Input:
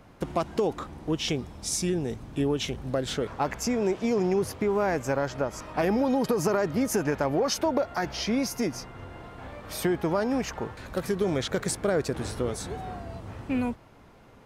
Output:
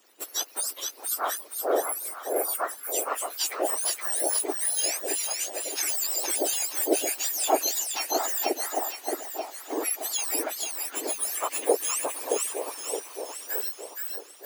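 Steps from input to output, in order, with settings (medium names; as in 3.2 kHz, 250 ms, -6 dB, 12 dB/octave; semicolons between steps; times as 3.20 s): spectrum inverted on a logarithmic axis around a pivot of 2 kHz; two-band feedback delay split 1.1 kHz, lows 620 ms, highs 470 ms, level -3.5 dB; harmonic-percussive split harmonic -15 dB; trim +4.5 dB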